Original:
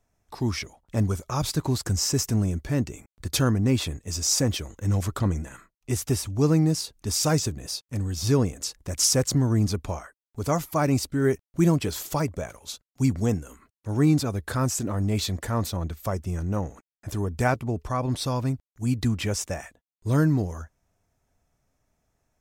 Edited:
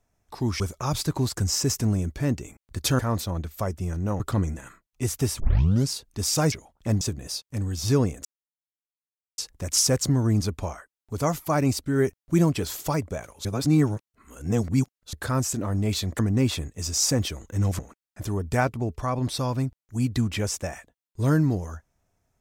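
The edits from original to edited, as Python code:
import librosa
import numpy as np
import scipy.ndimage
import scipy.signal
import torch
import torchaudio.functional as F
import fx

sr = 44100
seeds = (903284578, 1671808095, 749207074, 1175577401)

y = fx.edit(x, sr, fx.move(start_s=0.6, length_s=0.49, to_s=7.4),
    fx.swap(start_s=3.48, length_s=1.6, other_s=15.45, other_length_s=1.21),
    fx.tape_start(start_s=6.28, length_s=0.5),
    fx.insert_silence(at_s=8.64, length_s=1.13),
    fx.reverse_span(start_s=12.71, length_s=1.68), tone=tone)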